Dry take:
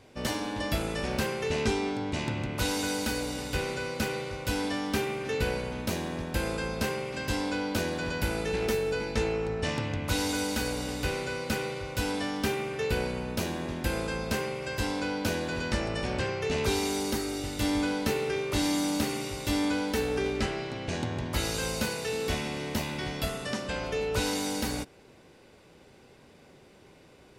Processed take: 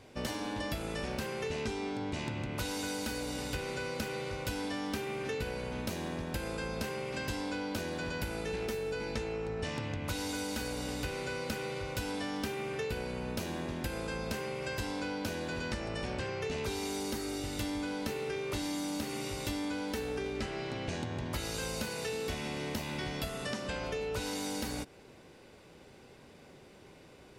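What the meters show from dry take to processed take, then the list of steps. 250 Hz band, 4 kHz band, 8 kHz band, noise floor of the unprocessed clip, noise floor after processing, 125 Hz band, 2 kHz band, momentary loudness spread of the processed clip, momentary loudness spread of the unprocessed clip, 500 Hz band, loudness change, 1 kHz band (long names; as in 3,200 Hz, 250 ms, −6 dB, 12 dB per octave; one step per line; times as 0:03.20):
−6.0 dB, −6.0 dB, −6.0 dB, −56 dBFS, −56 dBFS, −6.0 dB, −6.0 dB, 2 LU, 5 LU, −6.0 dB, −6.0 dB, −5.5 dB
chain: downward compressor, threshold −33 dBFS, peak gain reduction 10 dB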